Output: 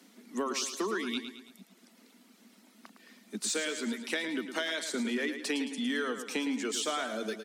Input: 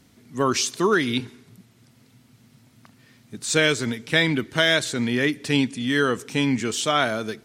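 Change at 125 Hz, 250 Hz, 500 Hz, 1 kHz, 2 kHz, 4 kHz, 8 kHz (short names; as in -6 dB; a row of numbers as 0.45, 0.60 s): under -25 dB, -10.0 dB, -11.5 dB, -12.0 dB, -12.0 dB, -11.0 dB, -7.0 dB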